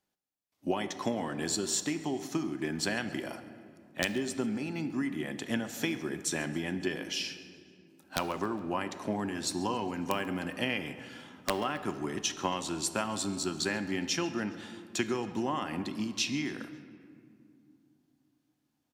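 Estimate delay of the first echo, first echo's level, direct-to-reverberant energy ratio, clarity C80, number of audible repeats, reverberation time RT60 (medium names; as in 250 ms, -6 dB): 137 ms, -21.0 dB, 9.5 dB, 12.0 dB, 2, 2.4 s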